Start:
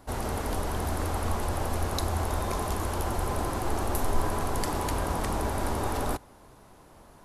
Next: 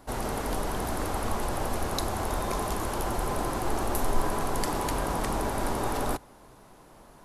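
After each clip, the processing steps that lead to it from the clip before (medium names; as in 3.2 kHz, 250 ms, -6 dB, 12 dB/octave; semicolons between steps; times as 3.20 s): peaking EQ 77 Hz -12.5 dB 0.44 oct; trim +1 dB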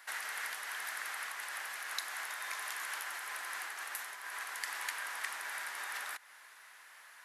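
compression, threshold -33 dBFS, peak gain reduction 14.5 dB; resonant high-pass 1.8 kHz, resonance Q 3.3; trim +1 dB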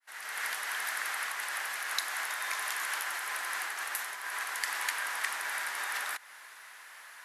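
fade-in on the opening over 0.50 s; trim +6 dB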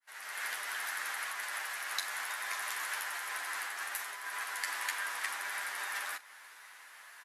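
early reflections 10 ms -4.5 dB, 43 ms -15 dB; trim -4.5 dB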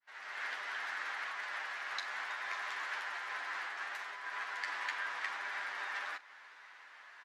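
distance through air 170 m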